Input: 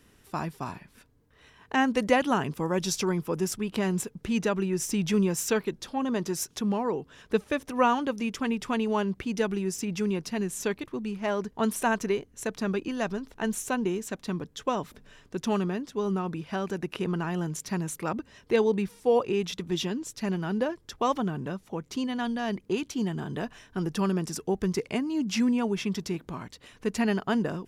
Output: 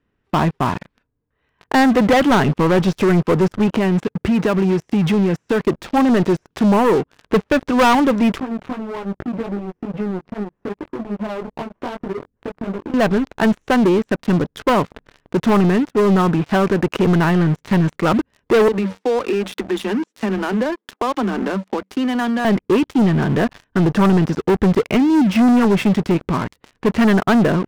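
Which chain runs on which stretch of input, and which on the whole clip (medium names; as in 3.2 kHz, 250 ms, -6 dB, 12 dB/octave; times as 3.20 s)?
3.67–5.60 s: compression 5:1, threshold -29 dBFS + high-pass 56 Hz
8.40–12.94 s: low-pass 1.1 kHz + compression 10:1, threshold -36 dBFS + chorus 2.5 Hz, delay 19 ms, depth 2.9 ms
18.68–22.45 s: Chebyshev high-pass 190 Hz, order 10 + treble shelf 2.4 kHz +6 dB + compression 4:1, threshold -35 dBFS
whole clip: de-esser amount 80%; low-pass 2.2 kHz 12 dB/octave; waveshaping leveller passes 5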